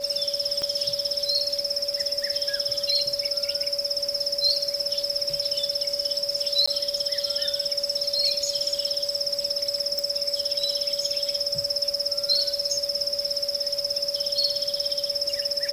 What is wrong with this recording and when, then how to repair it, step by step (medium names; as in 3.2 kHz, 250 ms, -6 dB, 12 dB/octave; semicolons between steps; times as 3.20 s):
whine 570 Hz -31 dBFS
0.62 s: pop -17 dBFS
6.66–6.67 s: dropout 15 ms
9.99 s: pop -14 dBFS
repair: de-click; band-stop 570 Hz, Q 30; interpolate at 6.66 s, 15 ms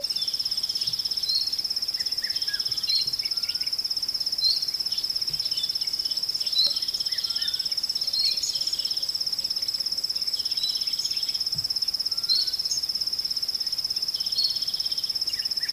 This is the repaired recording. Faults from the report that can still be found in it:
0.62 s: pop